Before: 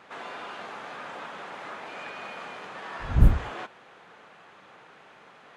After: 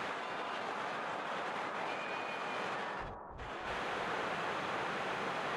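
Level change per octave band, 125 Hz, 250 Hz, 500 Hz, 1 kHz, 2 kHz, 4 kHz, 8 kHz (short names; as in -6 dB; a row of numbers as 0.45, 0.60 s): -23.0 dB, -8.5 dB, +1.5 dB, +1.5 dB, +1.0 dB, +1.5 dB, n/a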